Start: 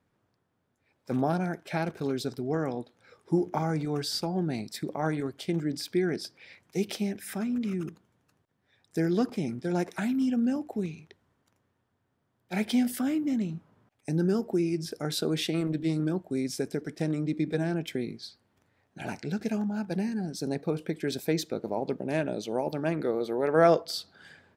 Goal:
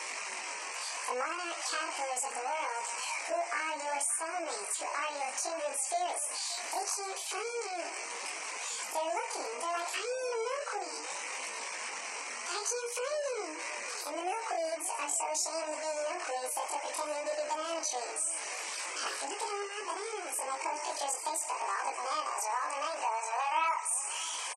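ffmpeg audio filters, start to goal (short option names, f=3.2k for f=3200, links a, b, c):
-filter_complex "[0:a]aeval=exprs='val(0)+0.5*0.0316*sgn(val(0))':c=same,highpass=430,equalizer=f=510:t=q:w=4:g=5,equalizer=f=750:t=q:w=4:g=-4,equalizer=f=1.2k:t=q:w=4:g=8,equalizer=f=1.8k:t=q:w=4:g=-9,equalizer=f=3k:t=q:w=4:g=7,equalizer=f=4.3k:t=q:w=4:g=9,lowpass=f=5.6k:w=0.5412,lowpass=f=5.6k:w=1.3066,acompressor=threshold=-31dB:ratio=2.5,asetrate=85689,aresample=44100,atempo=0.514651,flanger=delay=18:depth=6.6:speed=0.69,asplit=2[a][b];[b]aecho=0:1:579|1158|1737|2316:0.158|0.0792|0.0396|0.0198[c];[a][c]amix=inputs=2:normalize=0,afftfilt=real='re*gte(hypot(re,im),0.00355)':imag='im*gte(hypot(re,im),0.00355)':win_size=1024:overlap=0.75,volume=2dB"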